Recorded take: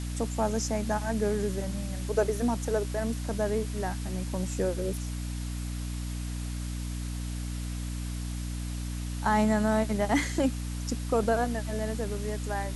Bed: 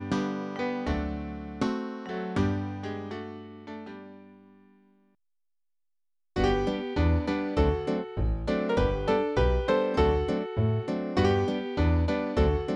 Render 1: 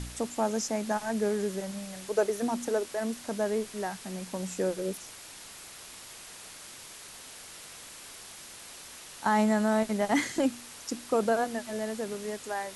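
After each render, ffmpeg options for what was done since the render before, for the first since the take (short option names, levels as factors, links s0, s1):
-af "bandreject=f=60:t=h:w=4,bandreject=f=120:t=h:w=4,bandreject=f=180:t=h:w=4,bandreject=f=240:t=h:w=4,bandreject=f=300:t=h:w=4"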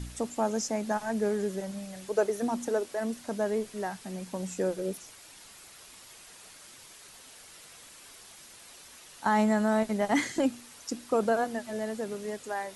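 -af "afftdn=nr=6:nf=-47"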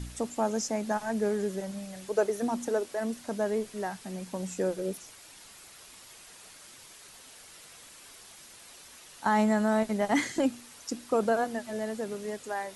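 -af anull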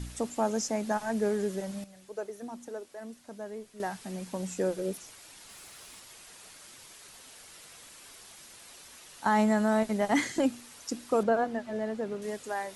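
-filter_complex "[0:a]asettb=1/sr,asplit=3[s0][s1][s2];[s0]atrim=end=5.494[s3];[s1]atrim=start=5.49:end=6,asetpts=PTS-STARTPTS,afade=t=in:d=0.004:c=qsin,afade=t=out:st=0.506:d=0.004:c=qsin,aeval=exprs='val(0)+0.5*0.00141*sgn(val(0))':c=same[s4];[s2]atrim=start=5.996[s5];[s3][s4]acrossfade=d=0.004:c1=hsin:c2=qsin[s6];[s6][s5]acrossfade=d=0.004:c1=qsin:c2=hsin,asettb=1/sr,asplit=3[s7][s8][s9];[s7]atrim=end=11.234[s10];[s8]atrim=start=11.23:end=12.22,asetpts=PTS-STARTPTS,afade=t=in:d=0.004:c=qsin,afade=t=out:st=0.986:d=0.004:c=qsin,aemphasis=mode=reproduction:type=75fm[s11];[s9]atrim=start=12.216[s12];[s10][s11]acrossfade=d=0.004:c1=hsin:c2=qsin[s13];[s13][s12]acrossfade=d=0.004:c1=qsin:c2=hsin,asplit=3[s14][s15][s16];[s14]atrim=end=1.842[s17];[s15]atrim=start=1.838:end=3.802,asetpts=PTS-STARTPTS,volume=0.282[s18];[s16]atrim=start=3.798[s19];[s17][s18]acrossfade=d=0.004:c1=hsin:c2=hsin[s20];[s20][s19]acrossfade=d=0.004:c1=hsin:c2=hsin"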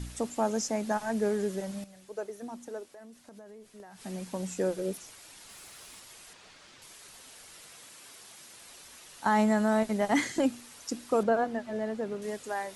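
-filter_complex "[0:a]asettb=1/sr,asplit=3[s0][s1][s2];[s0]atrim=end=2.904[s3];[s1]atrim=start=2.9:end=4.02,asetpts=PTS-STARTPTS,afade=t=in:d=0.004:c=qsin,afade=t=out:st=1.116:d=0.004:c=qsin,acompressor=threshold=0.00562:ratio=10:attack=3.2:release=140:knee=1:detection=peak[s4];[s2]atrim=start=4.016[s5];[s3][s4]acrossfade=d=0.004:c1=hsin:c2=qsin[s6];[s6][s5]acrossfade=d=0.004:c1=qsin:c2=hsin,asettb=1/sr,asplit=3[s7][s8][s9];[s7]atrim=end=6.334[s10];[s8]atrim=start=6.33:end=6.82,asetpts=PTS-STARTPTS,afade=t=in:d=0.004:c=qsin,afade=t=out:st=0.486:d=0.004:c=qsin,lowpass=4900[s11];[s9]atrim=start=6.816[s12];[s10][s11]acrossfade=d=0.004:c1=hsin:c2=qsin[s13];[s13][s12]acrossfade=d=0.004:c1=qsin:c2=hsin,asettb=1/sr,asplit=3[s14][s15][s16];[s14]atrim=end=7.714[s17];[s15]atrim=start=7.71:end=8.59,asetpts=PTS-STARTPTS,afade=t=in:d=0.004:c=qsin,afade=t=out:st=0.876:d=0.004:c=qsin,highpass=95[s18];[s16]atrim=start=8.586[s19];[s17][s18]acrossfade=d=0.004:c1=hsin:c2=qsin[s20];[s20][s19]acrossfade=d=0.004:c1=qsin:c2=hsin"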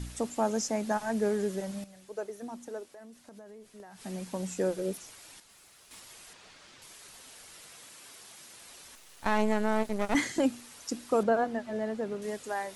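-filter_complex "[0:a]asettb=1/sr,asplit=3[s0][s1][s2];[s0]atrim=end=8.954[s3];[s1]atrim=start=8.95:end=10.15,asetpts=PTS-STARTPTS,afade=t=in:d=0.004:c=qsin,afade=t=out:st=1.196:d=0.004:c=qsin,aeval=exprs='max(val(0),0)':c=same[s4];[s2]atrim=start=10.146[s5];[s3][s4]acrossfade=d=0.004:c1=hsin:c2=qsin[s6];[s6][s5]acrossfade=d=0.004:c1=qsin:c2=hsin,asplit=3[s7][s8][s9];[s7]atrim=end=5.402[s10];[s8]atrim=start=5.398:end=5.912,asetpts=PTS-STARTPTS,volume=0.376[s11];[s9]atrim=start=5.908[s12];[s10][s11]acrossfade=d=0.004:c1=hsin:c2=hsin[s13];[s13][s12]acrossfade=d=0.004:c1=hsin:c2=hsin"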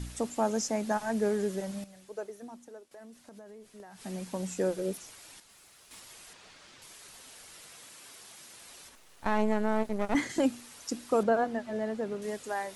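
-filter_complex "[0:a]asettb=1/sr,asplit=3[s0][s1][s2];[s0]atrim=end=8.894[s3];[s1]atrim=start=8.89:end=10.3,asetpts=PTS-STARTPTS,afade=t=in:d=0.004:c=qsin,afade=t=out:st=1.406:d=0.004:c=qsin,highshelf=f=2000:g=-6.5[s4];[s2]atrim=start=10.296[s5];[s3][s4]acrossfade=d=0.004:c1=hsin:c2=qsin[s6];[s6][s5]acrossfade=d=0.004:c1=qsin:c2=hsin,asplit=2[s7][s8];[s7]atrim=end=2.91,asetpts=PTS-STARTPTS,afade=t=out:st=1.98:d=0.93:silence=0.237137[s9];[s8]atrim=start=2.91,asetpts=PTS-STARTPTS,afade=t=in:d=0.004:c=hsin:silence=0.237137[s10];[s9][s10]concat=n=2:v=0:a=1"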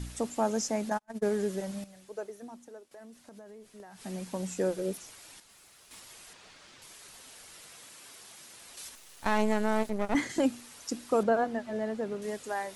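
-filter_complex "[0:a]asplit=3[s0][s1][s2];[s0]afade=t=out:st=0.89:d=0.02[s3];[s1]agate=range=0.00891:threshold=0.0355:ratio=16:release=100:detection=peak,afade=t=in:st=0.89:d=0.02,afade=t=out:st=1.3:d=0.02[s4];[s2]afade=t=in:st=1.3:d=0.02[s5];[s3][s4][s5]amix=inputs=3:normalize=0,asettb=1/sr,asplit=3[s6][s7][s8];[s6]atrim=end=8.774[s9];[s7]atrim=start=8.77:end=9.9,asetpts=PTS-STARTPTS,afade=t=in:d=0.004:c=qsin,afade=t=out:st=1.126:d=0.004:c=qsin,highshelf=f=2600:g=9[s10];[s8]atrim=start=9.896[s11];[s9][s10]acrossfade=d=0.004:c1=hsin:c2=qsin[s12];[s12][s11]acrossfade=d=0.004:c1=qsin:c2=hsin"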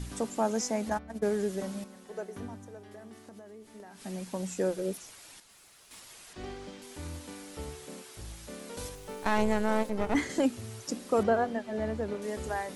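-filter_complex "[1:a]volume=0.141[s0];[0:a][s0]amix=inputs=2:normalize=0"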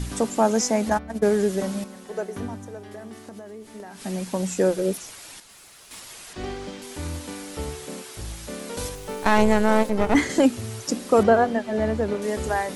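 -af "volume=2.82"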